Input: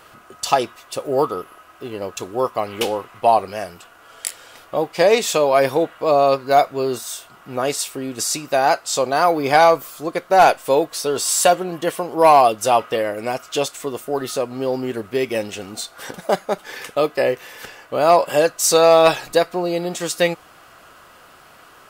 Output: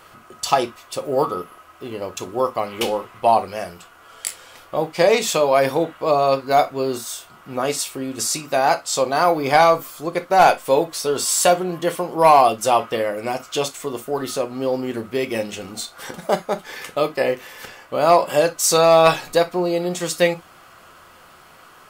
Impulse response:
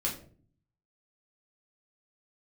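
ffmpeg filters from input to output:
-filter_complex "[0:a]asplit=2[a][b];[1:a]atrim=start_sample=2205,atrim=end_sample=3087[c];[b][c]afir=irnorm=-1:irlink=0,volume=-10dB[d];[a][d]amix=inputs=2:normalize=0,volume=-3dB"

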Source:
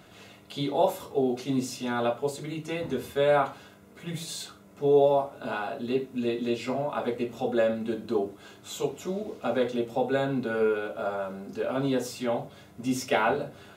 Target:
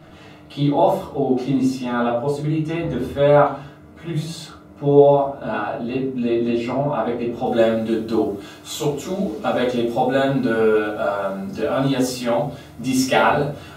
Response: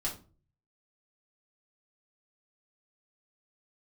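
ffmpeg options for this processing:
-filter_complex "[0:a]asetnsamples=n=441:p=0,asendcmd='7.46 highshelf g 2',highshelf=f=3k:g=-10.5[a];[1:a]atrim=start_sample=2205[b];[a][b]afir=irnorm=-1:irlink=0,volume=6dB"

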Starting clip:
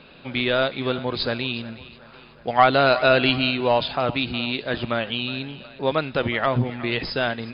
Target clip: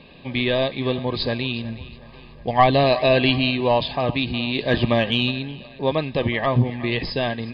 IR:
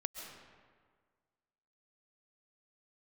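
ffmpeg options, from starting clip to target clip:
-filter_complex "[0:a]asettb=1/sr,asplit=3[a][b][c];[a]atrim=end=1.644[d];[b]atrim=start=1.64:end=2.84,asetpts=PTS-STARTPTS,afade=t=in:d=0.004:c=qsin,afade=t=out:st=1.196:d=0.004:c=qsin,lowshelf=f=90:g=10[e];[c]atrim=start=2.836[f];[d][e]acrossfade=d=0.004:c1=hsin:c2=qsin[g];[g][f]acrossfade=d=0.004:c1=qsin:c2=hsin,asplit=3[h][i][j];[h]afade=t=out:st=4.55:d=0.02[k];[i]acontrast=30,afade=t=in:st=4.55:d=0.02,afade=t=out:st=5.3:d=0.02[l];[j]afade=t=in:st=5.3:d=0.02[m];[k][l][m]amix=inputs=3:normalize=0,asuperstop=centerf=1400:order=20:qfactor=4.5,lowshelf=f=220:g=6"

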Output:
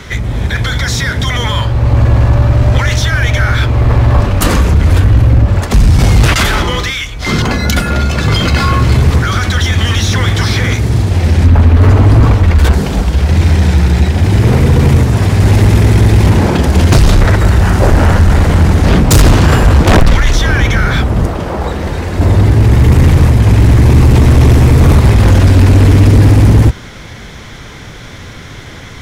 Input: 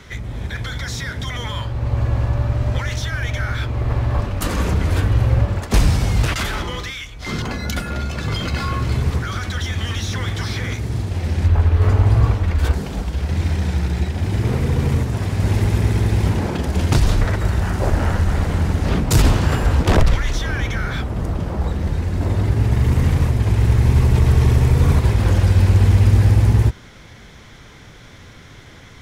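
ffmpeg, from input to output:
-filter_complex "[0:a]asettb=1/sr,asplit=3[a][b][c];[a]atrim=end=4.564[d];[b]atrim=start=4.56:end=5.99,asetpts=PTS-STARTPTS,afade=t=in:d=0.004:c=qsin,afade=t=out:st=1.426:d=0.004:c=qsin,acrossover=split=130[e][f];[f]acompressor=threshold=-26dB:ratio=10[g];[e][g]amix=inputs=2:normalize=0[h];[c]atrim=start=5.986[i];[d][h]acrossfade=d=0.004:c1=hsin:c2=qsin[j];[j][i]acrossfade=d=0.004:c1=qsin:c2=hsin,asettb=1/sr,asplit=3[k][l][m];[k]atrim=end=21.274[n];[l]atrim=start=21.27:end=22.19,asetpts=PTS-STARTPTS,afade=t=in:d=0.004:c=qsin,afade=t=out:st=0.916:d=0.004:c=qsin,bass=f=250:g=-10,treble=f=4k:g=-2[o];[m]atrim=start=22.186[p];[n][o]acrossfade=d=0.004:c1=hsin:c2=qsin[q];[q][p]acrossfade=d=0.004:c1=qsin:c2=hsin,aeval=exprs='0.631*sin(PI/2*2*val(0)/0.631)':c=same,volume=2.5dB"

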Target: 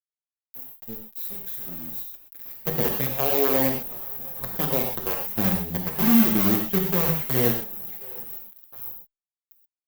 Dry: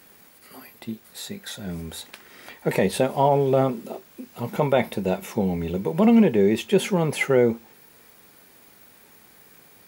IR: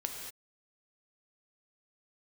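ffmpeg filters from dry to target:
-filter_complex "[0:a]asettb=1/sr,asplit=3[a][b][c];[a]atrim=end=1.074[d];[b]atrim=start=1.07:end=1.88,asetpts=PTS-STARTPTS,afade=t=in:d=0.004:c=qsin,afade=t=out:st=0.806:d=0.004:c=qsin,aeval=exprs='val(0)+0.5*0.00473*sgn(val(0))':c=same[e];[c]atrim=start=1.876[f];[d][e]acrossfade=d=0.004:c1=hsin:c2=qsin[g];[g][f]acrossfade=d=0.004:c1=qsin:c2=hsin,asettb=1/sr,asplit=3[h][i][j];[h]atrim=end=5.204[k];[i]atrim=start=5.2:end=6.79,asetpts=PTS-STARTPTS,afade=t=in:d=0.004:c=qsin,afade=t=out:st=1.586:d=0.004:c=qsin,aecho=1:1:1:0.66,atrim=end_sample=70119[l];[j]atrim=start=6.786[m];[k][l]acrossfade=d=0.004:c1=hsin:c2=qsin[n];[n][m]acrossfade=d=0.004:c1=qsin:c2=hsin,aecho=1:1:709|1418|2127:0.1|0.044|0.0194,acrossover=split=520[o][p];[o]acontrast=74[q];[p]alimiter=limit=-22.5dB:level=0:latency=1[r];[q][r]amix=inputs=2:normalize=0,acrusher=bits=3:dc=4:mix=0:aa=0.000001,aexciter=amount=8.6:drive=8.7:freq=12k[s];[1:a]atrim=start_sample=2205,asetrate=79380,aresample=44100[t];[s][t]afir=irnorm=-1:irlink=0,asplit=2[u][v];[v]adelay=6.9,afreqshift=-0.91[w];[u][w]amix=inputs=2:normalize=1,volume=-3.5dB"

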